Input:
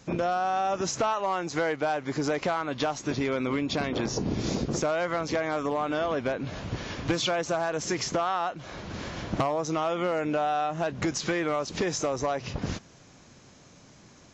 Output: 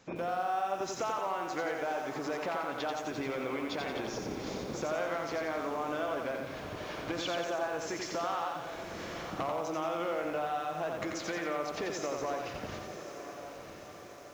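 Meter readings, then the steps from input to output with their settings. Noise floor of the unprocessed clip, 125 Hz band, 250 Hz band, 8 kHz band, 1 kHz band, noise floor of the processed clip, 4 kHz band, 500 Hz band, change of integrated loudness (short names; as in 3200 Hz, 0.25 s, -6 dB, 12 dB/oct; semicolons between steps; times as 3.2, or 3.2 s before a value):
-54 dBFS, -12.5 dB, -8.5 dB, n/a, -5.5 dB, -47 dBFS, -7.5 dB, -6.0 dB, -6.5 dB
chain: on a send: diffused feedback echo 1.095 s, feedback 50%, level -12.5 dB; on the sum: compressor 1.5:1, threshold -33 dBFS, peak gain reduction 4.5 dB; tone controls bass -9 dB, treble -6 dB; lo-fi delay 88 ms, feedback 55%, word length 9-bit, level -3.5 dB; gain -4 dB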